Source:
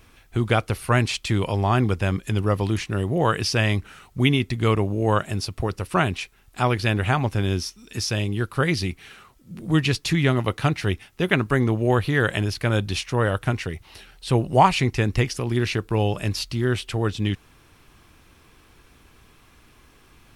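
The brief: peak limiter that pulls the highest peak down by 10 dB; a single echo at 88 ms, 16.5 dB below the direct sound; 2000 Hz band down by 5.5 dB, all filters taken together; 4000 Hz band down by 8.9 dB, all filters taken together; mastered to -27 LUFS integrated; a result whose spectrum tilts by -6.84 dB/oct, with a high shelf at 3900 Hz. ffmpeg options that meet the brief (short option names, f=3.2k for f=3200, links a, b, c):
-af "equalizer=f=2k:t=o:g=-4,highshelf=f=3.9k:g=-7.5,equalizer=f=4k:t=o:g=-6,alimiter=limit=-14.5dB:level=0:latency=1,aecho=1:1:88:0.15"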